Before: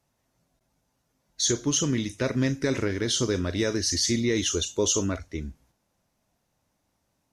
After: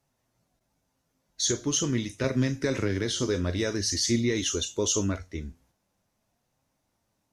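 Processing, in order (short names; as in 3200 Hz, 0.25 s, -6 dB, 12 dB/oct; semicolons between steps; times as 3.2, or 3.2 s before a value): flange 0.45 Hz, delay 7.2 ms, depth 4.8 ms, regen +69%; 2.24–3.2 three-band squash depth 40%; gain +2.5 dB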